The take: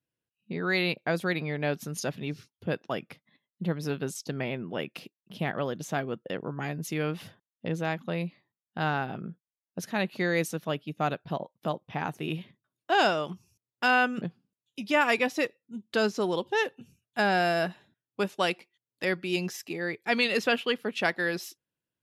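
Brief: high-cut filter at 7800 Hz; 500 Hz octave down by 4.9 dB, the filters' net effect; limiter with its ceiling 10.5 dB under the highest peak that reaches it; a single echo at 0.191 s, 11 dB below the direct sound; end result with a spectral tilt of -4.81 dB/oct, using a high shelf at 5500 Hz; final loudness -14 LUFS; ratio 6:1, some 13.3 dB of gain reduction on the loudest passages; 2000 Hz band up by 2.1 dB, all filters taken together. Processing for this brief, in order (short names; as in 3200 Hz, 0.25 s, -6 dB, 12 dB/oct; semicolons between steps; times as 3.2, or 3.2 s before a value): LPF 7800 Hz; bell 500 Hz -6.5 dB; bell 2000 Hz +4 dB; high shelf 5500 Hz -6 dB; compressor 6:1, threshold -34 dBFS; limiter -31.5 dBFS; echo 0.191 s -11 dB; gain +28.5 dB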